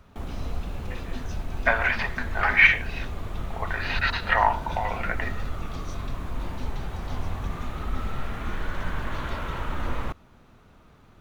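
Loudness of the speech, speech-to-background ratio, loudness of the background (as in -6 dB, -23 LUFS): -23.5 LUFS, 11.0 dB, -34.5 LUFS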